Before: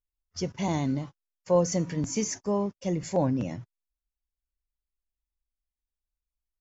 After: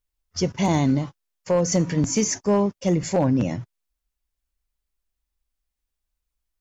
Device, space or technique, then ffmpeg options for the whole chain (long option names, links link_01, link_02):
limiter into clipper: -af "alimiter=limit=-18dB:level=0:latency=1:release=146,asoftclip=type=hard:threshold=-20.5dB,volume=8dB"